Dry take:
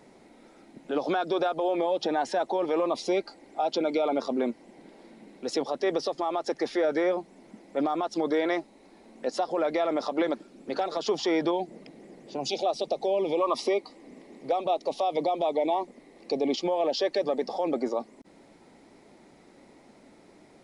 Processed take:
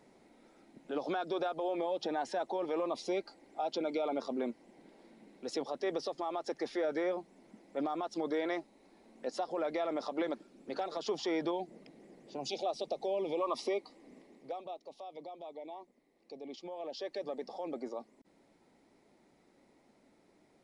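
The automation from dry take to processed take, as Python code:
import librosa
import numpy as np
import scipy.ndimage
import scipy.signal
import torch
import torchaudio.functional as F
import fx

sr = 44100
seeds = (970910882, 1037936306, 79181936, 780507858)

y = fx.gain(x, sr, db=fx.line((14.17, -8.0), (14.86, -20.0), (16.4, -20.0), (17.24, -12.0)))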